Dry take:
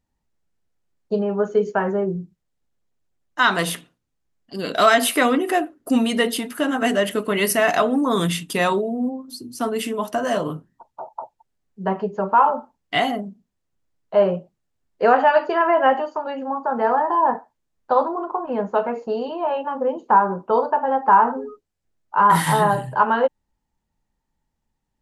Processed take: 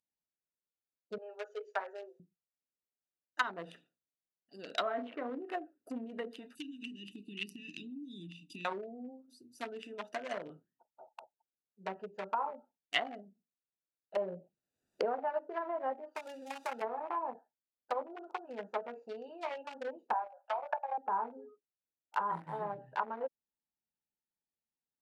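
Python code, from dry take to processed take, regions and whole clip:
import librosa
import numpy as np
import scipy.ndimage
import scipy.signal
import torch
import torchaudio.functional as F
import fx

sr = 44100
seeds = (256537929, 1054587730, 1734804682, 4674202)

y = fx.chain(x, sr, fx.steep_highpass(hz=450.0, slope=36),
    fx.high_shelf(hz=3600.0, db=7.0), at=(1.18, 2.2))
y = fx.chain(y, sr, fx.air_absorb(metres=390.0),
    fx.doubler(ms=37.0, db=-11.5),
    fx.sustainer(db_per_s=51.0), at=(4.82, 5.3))
y = fx.chain(y, sr, fx.cheby1_bandstop(low_hz=320.0, high_hz=2600.0, order=4),
    fx.band_squash(depth_pct=100), at=(6.55, 8.65))
y = fx.chain(y, sr, fx.low_shelf(hz=110.0, db=8.5),
    fx.band_squash(depth_pct=100), at=(14.16, 15.18))
y = fx.chain(y, sr, fx.crossing_spikes(level_db=-26.0),
    fx.band_squash(depth_pct=40), at=(16.15, 16.82))
y = fx.chain(y, sr, fx.cheby_ripple_highpass(hz=550.0, ripple_db=3),
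    fx.small_body(hz=(730.0, 1700.0, 3100.0), ring_ms=25, db=9),
    fx.band_squash(depth_pct=40), at=(20.13, 20.98))
y = fx.wiener(y, sr, points=41)
y = fx.env_lowpass_down(y, sr, base_hz=570.0, full_db=-16.5)
y = np.diff(y, prepend=0.0)
y = y * librosa.db_to_amplitude(7.0)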